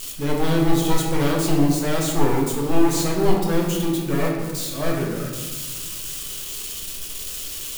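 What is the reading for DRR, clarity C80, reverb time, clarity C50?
-2.5 dB, 5.0 dB, 1.3 s, 2.5 dB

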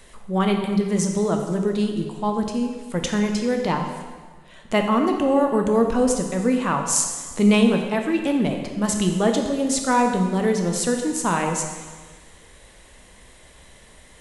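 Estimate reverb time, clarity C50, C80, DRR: 1.5 s, 5.0 dB, 6.5 dB, 3.0 dB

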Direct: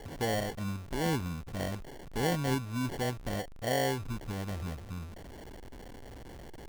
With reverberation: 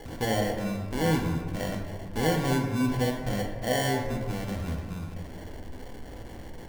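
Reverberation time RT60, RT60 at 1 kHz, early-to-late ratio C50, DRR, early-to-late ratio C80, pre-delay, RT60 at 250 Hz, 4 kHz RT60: 1.6 s, 1.4 s, 4.5 dB, 1.0 dB, 6.5 dB, 4 ms, 2.1 s, 0.85 s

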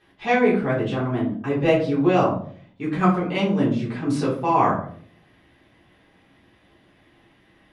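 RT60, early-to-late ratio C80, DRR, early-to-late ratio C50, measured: 0.55 s, 10.5 dB, -8.0 dB, 6.5 dB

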